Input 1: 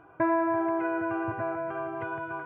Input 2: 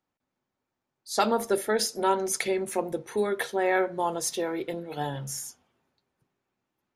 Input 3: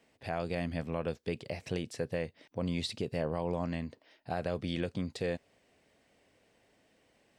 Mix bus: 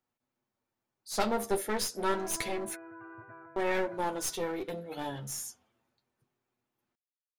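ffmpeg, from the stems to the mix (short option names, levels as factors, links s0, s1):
-filter_complex "[0:a]lowpass=f=1900:t=q:w=1.7,adelay=1900,volume=0.168[s0];[1:a]highshelf=f=11000:g=5,volume=1,asplit=3[s1][s2][s3];[s1]atrim=end=2.75,asetpts=PTS-STARTPTS,afade=t=out:st=2.746:d=0.004:c=hsin[s4];[s2]atrim=start=2.75:end=3.56,asetpts=PTS-STARTPTS,volume=0[s5];[s3]atrim=start=3.56,asetpts=PTS-STARTPTS,afade=t=in:d=0.004:c=hsin[s6];[s4][s5][s6]concat=n=3:v=0:a=1[s7];[s0][s7]amix=inputs=2:normalize=0,aeval=exprs='clip(val(0),-1,0.0266)':c=same,flanger=delay=8.2:depth=2:regen=-20:speed=0.31:shape=sinusoidal"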